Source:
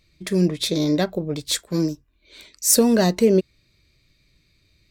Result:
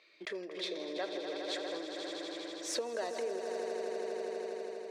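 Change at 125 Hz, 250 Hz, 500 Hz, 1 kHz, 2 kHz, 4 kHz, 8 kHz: under -35 dB, -23.0 dB, -13.0 dB, -10.0 dB, -9.0 dB, -13.0 dB, -22.5 dB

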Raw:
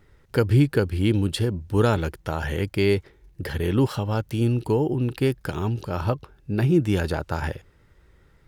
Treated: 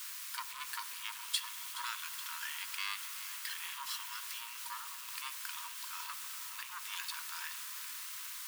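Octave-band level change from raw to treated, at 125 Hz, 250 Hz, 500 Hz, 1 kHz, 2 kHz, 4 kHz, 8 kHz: under -40 dB, under -40 dB, under -40 dB, -11.5 dB, -8.5 dB, -3.5 dB, +4.0 dB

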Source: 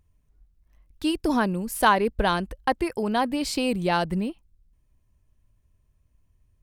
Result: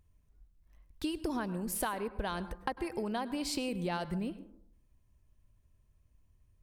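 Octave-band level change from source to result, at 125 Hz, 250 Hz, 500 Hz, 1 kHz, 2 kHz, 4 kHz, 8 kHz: -9.0, -10.0, -11.5, -14.0, -14.0, -10.5, -5.0 dB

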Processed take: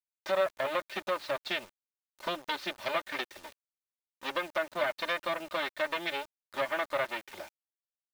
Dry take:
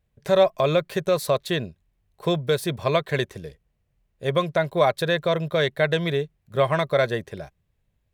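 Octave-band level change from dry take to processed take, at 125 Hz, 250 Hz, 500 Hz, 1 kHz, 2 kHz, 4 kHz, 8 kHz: -29.0, -15.5, -12.5, -7.0, -5.0, -7.0, -10.5 dB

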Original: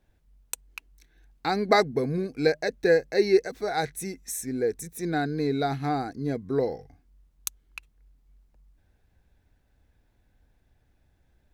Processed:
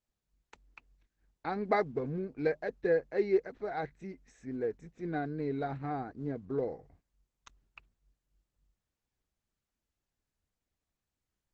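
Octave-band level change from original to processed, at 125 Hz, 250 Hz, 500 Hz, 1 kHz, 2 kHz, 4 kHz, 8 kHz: -8.0 dB, -8.0 dB, -7.5 dB, -8.5 dB, -10.0 dB, under -20 dB, under -30 dB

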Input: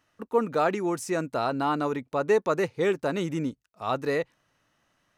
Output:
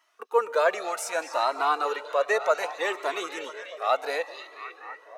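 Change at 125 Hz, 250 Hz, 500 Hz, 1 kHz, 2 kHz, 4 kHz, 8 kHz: under -35 dB, -15.5 dB, -0.5 dB, +3.0 dB, +4.5 dB, +5.0 dB, +4.0 dB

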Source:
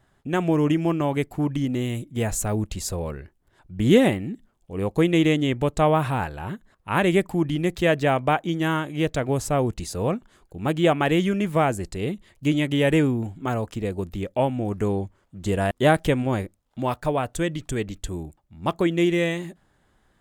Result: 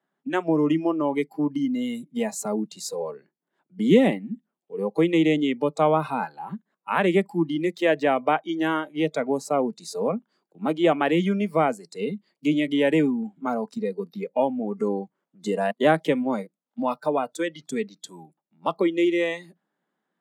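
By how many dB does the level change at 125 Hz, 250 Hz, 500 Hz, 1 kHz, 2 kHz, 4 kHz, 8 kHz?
-9.0, -0.5, 0.0, 0.0, -1.5, -3.0, -5.0 dB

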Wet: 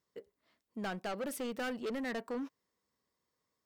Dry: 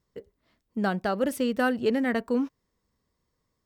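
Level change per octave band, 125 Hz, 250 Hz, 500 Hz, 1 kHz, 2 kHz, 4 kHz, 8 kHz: -13.0, -13.0, -11.5, -11.5, -10.5, -7.5, -4.5 dB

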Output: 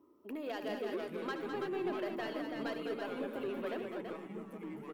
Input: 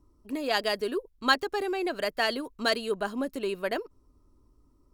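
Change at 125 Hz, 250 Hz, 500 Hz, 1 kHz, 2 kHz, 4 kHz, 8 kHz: n/a, -5.5 dB, -7.5 dB, -11.5 dB, -14.0 dB, -18.0 dB, under -15 dB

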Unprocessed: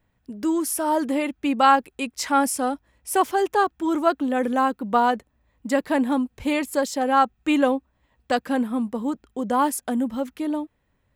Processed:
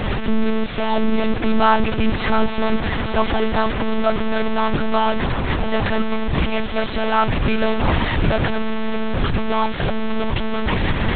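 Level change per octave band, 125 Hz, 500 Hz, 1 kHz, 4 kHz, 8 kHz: n/a, +3.5 dB, 0.0 dB, +8.0 dB, under -40 dB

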